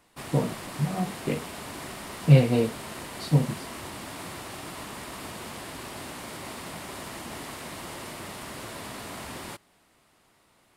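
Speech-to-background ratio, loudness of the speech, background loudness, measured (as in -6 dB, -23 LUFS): 12.5 dB, -25.5 LUFS, -38.0 LUFS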